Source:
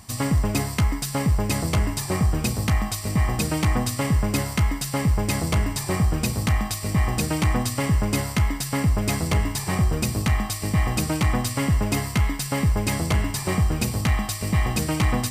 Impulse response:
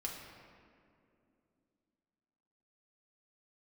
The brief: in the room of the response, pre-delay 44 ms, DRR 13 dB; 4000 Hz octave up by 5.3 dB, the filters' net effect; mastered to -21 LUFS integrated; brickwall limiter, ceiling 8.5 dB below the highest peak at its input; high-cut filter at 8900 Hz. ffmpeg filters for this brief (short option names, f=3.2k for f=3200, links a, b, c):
-filter_complex "[0:a]lowpass=8.9k,equalizer=f=4k:t=o:g=7,alimiter=limit=-17.5dB:level=0:latency=1,asplit=2[a][b];[1:a]atrim=start_sample=2205,adelay=44[c];[b][c]afir=irnorm=-1:irlink=0,volume=-13dB[d];[a][d]amix=inputs=2:normalize=0,volume=5.5dB"